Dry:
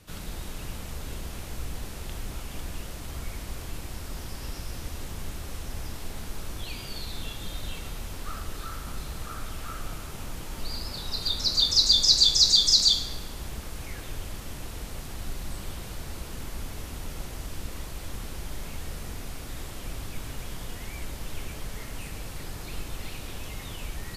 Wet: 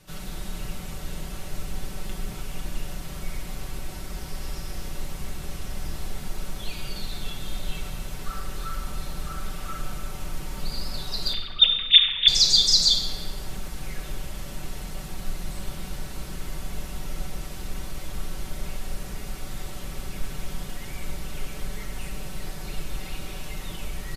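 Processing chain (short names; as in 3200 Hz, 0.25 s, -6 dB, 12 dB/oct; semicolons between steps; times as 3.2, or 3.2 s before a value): 11.33–12.28 sine-wave speech; comb 5.3 ms, depth 54%; analogue delay 0.552 s, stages 2048, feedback 60%, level -12.5 dB; on a send at -4.5 dB: reverb RT60 1.6 s, pre-delay 7 ms; on the sum: gain -1 dB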